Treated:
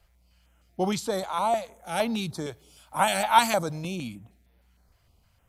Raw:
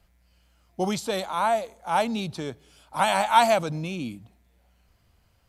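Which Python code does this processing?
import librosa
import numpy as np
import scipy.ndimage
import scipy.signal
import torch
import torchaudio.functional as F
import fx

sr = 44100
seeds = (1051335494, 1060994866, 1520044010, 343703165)

y = fx.high_shelf(x, sr, hz=8800.0, db=9.0, at=(1.74, 4.08))
y = fx.filter_held_notch(y, sr, hz=6.5, low_hz=230.0, high_hz=7400.0)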